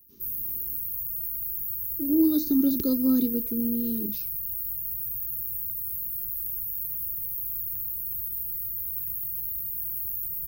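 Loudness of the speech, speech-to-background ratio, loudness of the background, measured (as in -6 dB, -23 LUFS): -25.5 LUFS, 3.0 dB, -28.5 LUFS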